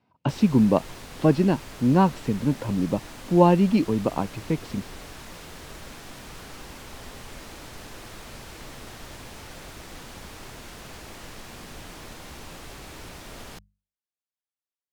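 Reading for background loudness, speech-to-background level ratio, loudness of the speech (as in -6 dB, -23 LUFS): -41.5 LUFS, 18.5 dB, -23.0 LUFS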